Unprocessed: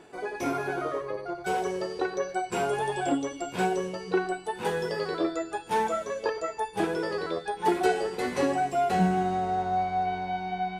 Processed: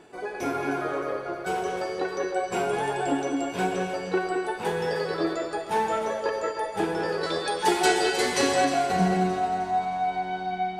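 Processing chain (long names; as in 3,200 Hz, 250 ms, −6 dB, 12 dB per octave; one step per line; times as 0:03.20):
0:07.23–0:08.65: parametric band 6,500 Hz +13.5 dB 2.9 octaves
feedback echo with a high-pass in the loop 310 ms, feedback 50%, level −10 dB
convolution reverb, pre-delay 3 ms, DRR 3 dB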